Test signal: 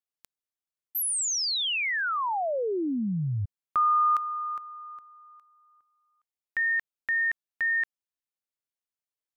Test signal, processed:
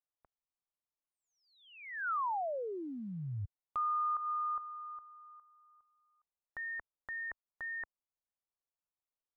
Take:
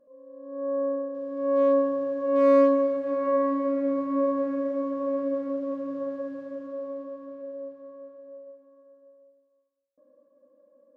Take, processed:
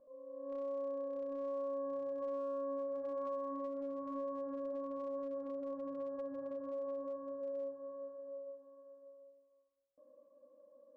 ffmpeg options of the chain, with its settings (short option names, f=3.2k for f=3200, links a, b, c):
-af "lowpass=f=1.1k:w=0.5412,lowpass=f=1.1k:w=1.3066,acompressor=threshold=-33dB:ratio=8:attack=0.11:release=315:knee=1:detection=peak,equalizer=f=240:w=0.44:g=-11.5,volume=4.5dB"